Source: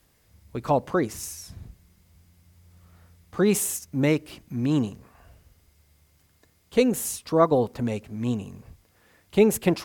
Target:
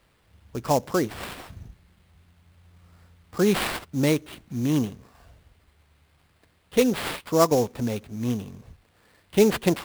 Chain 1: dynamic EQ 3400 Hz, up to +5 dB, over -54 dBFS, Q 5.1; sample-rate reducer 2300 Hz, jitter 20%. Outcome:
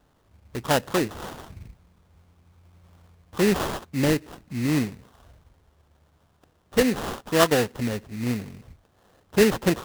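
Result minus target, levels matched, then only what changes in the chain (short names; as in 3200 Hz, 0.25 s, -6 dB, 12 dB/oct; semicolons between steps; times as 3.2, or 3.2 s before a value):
sample-rate reducer: distortion +6 dB
change: sample-rate reducer 6300 Hz, jitter 20%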